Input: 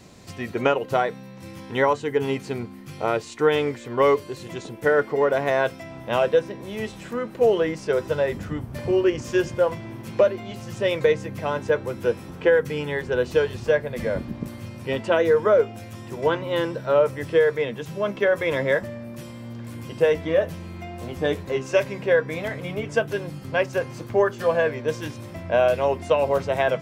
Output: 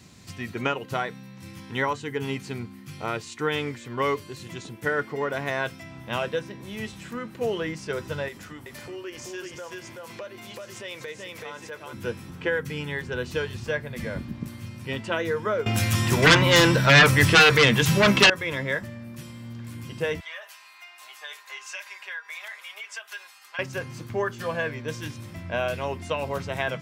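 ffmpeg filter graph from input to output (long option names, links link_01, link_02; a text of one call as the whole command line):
ffmpeg -i in.wav -filter_complex "[0:a]asettb=1/sr,asplit=3[link_01][link_02][link_03];[link_01]atrim=end=8.284[link_04];[link_02]atrim=start=8.28:end=11.93,asetpts=PTS-STARTPTS,afade=type=in:duration=0.004:curve=qsin,afade=type=out:start_time=3.646:duration=0.004:curve=qsin,bass=frequency=250:gain=-14,treble=frequency=4000:gain=3,aecho=1:1:379:0.596,atrim=end_sample=160965,acompressor=threshold=-33dB:ratio=2:attack=3.2:release=140:knee=1:detection=peak[link_05];[link_03]atrim=start=11.926[link_06];[link_04][link_05]acrossfade=duration=0.004:curve1=hsin:curve2=qsin[link_07];[link_07][link_06]acrossfade=duration=0.004:curve1=qsin:curve2=hsin,asettb=1/sr,asplit=3[link_08][link_09][link_10];[link_08]atrim=end=15.664[link_11];[link_09]atrim=start=15.66:end=18.3,asetpts=PTS-STARTPTS,afade=type=in:duration=0.004:curve=qsin,afade=type=out:start_time=2.636:duration=0.004:curve=qsin,equalizer=frequency=260:width=0.46:gain=-5.5,acontrast=30,aeval=exprs='0.473*sin(PI/2*3.55*val(0)/0.473)':channel_layout=same[link_12];[link_10]atrim=start=18.296[link_13];[link_11][link_12]acrossfade=duration=0.004:curve1=hsin:curve2=qsin[link_14];[link_14][link_13]acrossfade=duration=0.004:curve1=qsin:curve2=hsin,asettb=1/sr,asplit=3[link_15][link_16][link_17];[link_15]atrim=end=20.204[link_18];[link_16]atrim=start=20.2:end=23.59,asetpts=PTS-STARTPTS,afade=type=in:duration=0.004:curve=qsin,afade=type=out:start_time=3.386:duration=0.004:curve=qsin,highpass=frequency=860:width=0.5412,highpass=frequency=860:width=1.3066,aecho=1:1:4.9:0.54,atrim=end_sample=149499,acompressor=threshold=-32dB:ratio=3:attack=3.2:release=140:knee=1:detection=peak[link_19];[link_17]atrim=start=23.586[link_20];[link_18][link_19]acrossfade=duration=0.004:curve1=hsin:curve2=qsin[link_21];[link_21][link_20]acrossfade=duration=0.004:curve1=qsin:curve2=hsin,highpass=56,equalizer=frequency=550:width_type=o:width=1.6:gain=-10.5" out.wav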